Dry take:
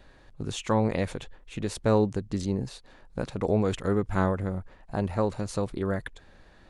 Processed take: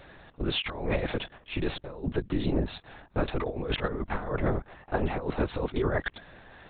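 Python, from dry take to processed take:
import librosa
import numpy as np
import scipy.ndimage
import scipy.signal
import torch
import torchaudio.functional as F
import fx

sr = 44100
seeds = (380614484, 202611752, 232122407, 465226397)

y = fx.highpass(x, sr, hz=270.0, slope=6)
y = fx.over_compress(y, sr, threshold_db=-32.0, ratio=-0.5)
y = fx.lpc_vocoder(y, sr, seeds[0], excitation='whisper', order=10)
y = y * librosa.db_to_amplitude(5.0)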